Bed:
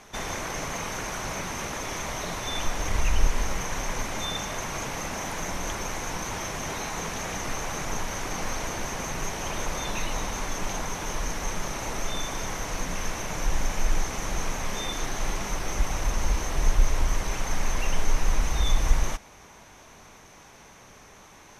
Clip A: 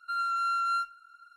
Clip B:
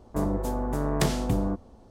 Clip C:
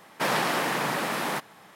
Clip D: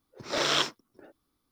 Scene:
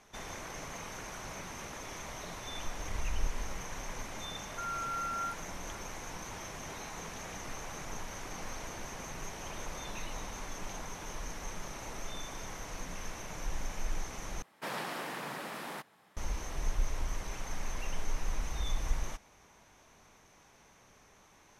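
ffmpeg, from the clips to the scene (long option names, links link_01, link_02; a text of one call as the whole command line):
ffmpeg -i bed.wav -i cue0.wav -i cue1.wav -i cue2.wav -filter_complex "[0:a]volume=-11dB[link_01];[1:a]lowpass=frequency=1800:width_type=q:width=4.9[link_02];[link_01]asplit=2[link_03][link_04];[link_03]atrim=end=14.424[link_05];[3:a]atrim=end=1.75,asetpts=PTS-STARTPTS,volume=-13dB[link_06];[link_04]atrim=start=16.166[link_07];[link_02]atrim=end=1.36,asetpts=PTS-STARTPTS,volume=-15dB,afade=type=in:duration=0.004:curve=hsin,afade=type=out:start_time=1.356:duration=0.004:curve=hsin,adelay=198009S[link_08];[link_05][link_06]acrossfade=duration=0.004:curve1=hsin:curve2=hsin[link_09];[link_09][link_07]acrossfade=duration=0.004:curve1=hsin:curve2=hsin[link_10];[link_10][link_08]amix=inputs=2:normalize=0" out.wav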